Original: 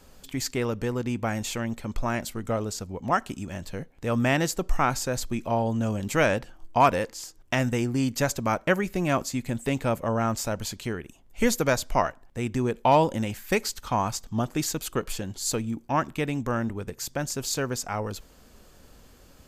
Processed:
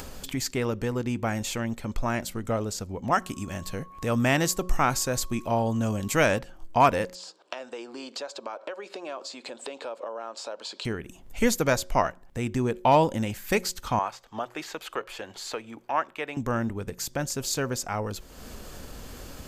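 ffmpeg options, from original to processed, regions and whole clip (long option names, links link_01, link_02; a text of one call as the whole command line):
ffmpeg -i in.wav -filter_complex "[0:a]asettb=1/sr,asplit=3[link_01][link_02][link_03];[link_01]atrim=end=3.114[link_04];[link_02]atrim=start=3.11:end=6.39,asetpts=PTS-STARTPTS,afade=type=in:duration=0.004:curve=qsin,afade=type=out:start_time=3.276:duration=0.004:curve=qsin,highshelf=frequency=4800:gain=5.5,aeval=exprs='val(0)+0.00355*sin(2*PI*1100*n/s)':channel_layout=same[link_05];[link_03]atrim=start=6.386[link_06];[link_04][link_05]acrossfade=duration=0.004:curve1=hsin:curve2=qsin[link_07];[link_07][link_06]acrossfade=duration=0.004:curve1=qsin:curve2=hsin,asettb=1/sr,asplit=3[link_08][link_09][link_10];[link_08]atrim=end=7.154[link_11];[link_09]atrim=start=7.15:end=10.85,asetpts=PTS-STARTPTS,afade=type=in:duration=0.004:curve=qsin,afade=type=out:start_time=3.696:duration=0.004:curve=qsin,acompressor=threshold=-36dB:ratio=4:attack=3.2:release=140:knee=1:detection=peak,highpass=frequency=380:width=0.5412,highpass=frequency=380:width=1.3066,equalizer=frequency=550:width_type=q:width=4:gain=4,equalizer=frequency=1000:width_type=q:width=4:gain=3,equalizer=frequency=2000:width_type=q:width=4:gain=-9,equalizer=frequency=4100:width_type=q:width=4:gain=5,equalizer=frequency=6200:width_type=q:width=4:gain=-9,lowpass=frequency=6800:width=0.5412,lowpass=frequency=6800:width=1.3066[link_12];[link_10]atrim=start=10.846[link_13];[link_11][link_12]acrossfade=duration=0.004:curve1=hsin:curve2=qsin[link_14];[link_14][link_13]acrossfade=duration=0.004:curve1=qsin:curve2=hsin,asettb=1/sr,asplit=3[link_15][link_16][link_17];[link_15]atrim=end=13.994[link_18];[link_16]atrim=start=13.99:end=16.37,asetpts=PTS-STARTPTS,afade=type=in:duration=0.004:curve=qsin,afade=type=out:start_time=2.376:duration=0.004:curve=qsin,acrossover=split=4100[link_19][link_20];[link_20]acompressor=threshold=-37dB:ratio=4:attack=1:release=60[link_21];[link_19][link_21]amix=inputs=2:normalize=0,acrossover=split=430 3600:gain=0.0708 1 0.251[link_22][link_23][link_24];[link_22][link_23][link_24]amix=inputs=3:normalize=0,bandreject=frequency=60:width_type=h:width=6,bandreject=frequency=120:width_type=h:width=6,bandreject=frequency=180:width_type=h:width=6[link_25];[link_17]atrim=start=16.366[link_26];[link_18][link_25]acrossfade=duration=0.004:curve1=hsin:curve2=qsin[link_27];[link_27][link_26]acrossfade=duration=0.004:curve1=qsin:curve2=hsin,acompressor=mode=upward:threshold=-29dB:ratio=2.5,bandreject=frequency=181.7:width_type=h:width=4,bandreject=frequency=363.4:width_type=h:width=4,bandreject=frequency=545.1:width_type=h:width=4" out.wav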